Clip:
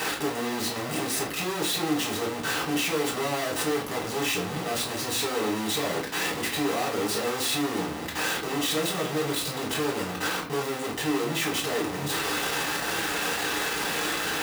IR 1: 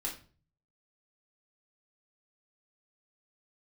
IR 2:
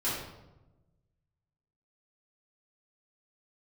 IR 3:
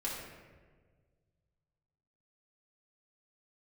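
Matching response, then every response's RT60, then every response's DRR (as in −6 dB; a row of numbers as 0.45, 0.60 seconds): 1; 0.40, 1.0, 1.5 seconds; −4.0, −11.5, −6.0 decibels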